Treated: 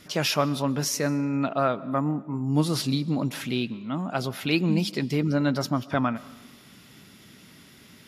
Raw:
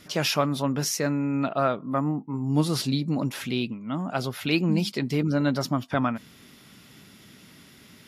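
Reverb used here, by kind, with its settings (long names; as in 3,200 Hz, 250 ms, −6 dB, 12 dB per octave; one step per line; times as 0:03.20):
comb and all-pass reverb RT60 1.2 s, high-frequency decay 0.8×, pre-delay 90 ms, DRR 19.5 dB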